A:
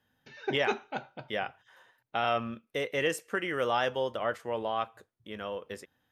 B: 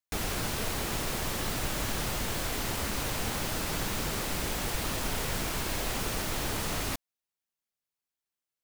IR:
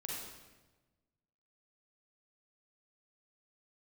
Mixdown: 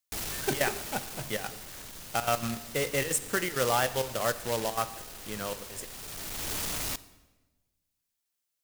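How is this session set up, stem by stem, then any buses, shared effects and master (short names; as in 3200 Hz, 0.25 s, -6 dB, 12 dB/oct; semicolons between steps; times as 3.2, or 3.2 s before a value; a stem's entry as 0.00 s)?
-0.5 dB, 0.00 s, send -12 dB, graphic EQ 125/4000/8000 Hz +8/-10/+6 dB; step gate "xx.xxxx.x.x" 198 bpm -12 dB; companded quantiser 4-bit
-0.5 dB, 0.00 s, send -15 dB, hard clip -36 dBFS, distortion -7 dB; auto duck -16 dB, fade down 1.70 s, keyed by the first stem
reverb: on, RT60 1.2 s, pre-delay 36 ms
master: high shelf 2900 Hz +8.5 dB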